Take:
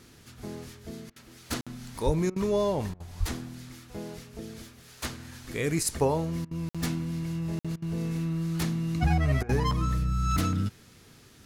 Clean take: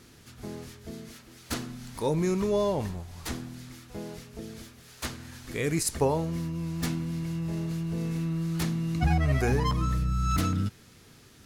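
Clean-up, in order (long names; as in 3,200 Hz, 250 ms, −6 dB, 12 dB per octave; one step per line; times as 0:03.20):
high-pass at the plosives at 0:02.05/0:03.19
repair the gap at 0:01.61/0:06.69/0:07.59, 56 ms
repair the gap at 0:01.10/0:02.30/0:02.94/0:06.45/0:07.76/0:09.43, 60 ms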